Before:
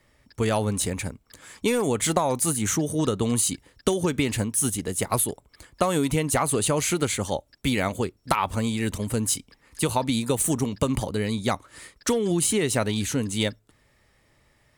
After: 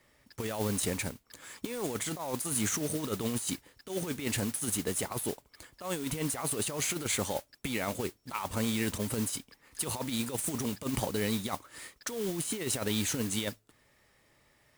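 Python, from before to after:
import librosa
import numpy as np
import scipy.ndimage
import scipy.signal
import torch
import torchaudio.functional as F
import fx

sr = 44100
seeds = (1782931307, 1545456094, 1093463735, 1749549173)

y = fx.low_shelf(x, sr, hz=120.0, db=-9.0)
y = fx.over_compress(y, sr, threshold_db=-27.0, ratio=-0.5)
y = fx.mod_noise(y, sr, seeds[0], snr_db=11)
y = F.gain(torch.from_numpy(y), -5.0).numpy()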